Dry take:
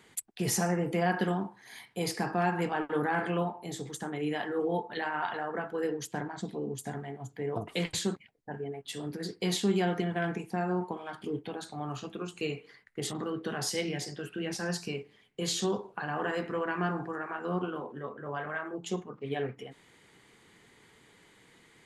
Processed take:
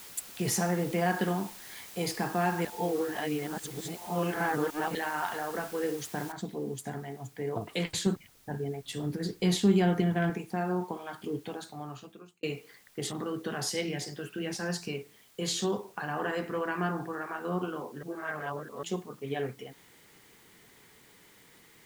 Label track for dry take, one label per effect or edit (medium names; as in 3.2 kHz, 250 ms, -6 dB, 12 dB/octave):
2.650000	4.950000	reverse
6.320000	6.320000	noise floor step -48 dB -62 dB
8.060000	10.300000	bass shelf 180 Hz +11.5 dB
11.500000	12.430000	fade out
18.030000	18.830000	reverse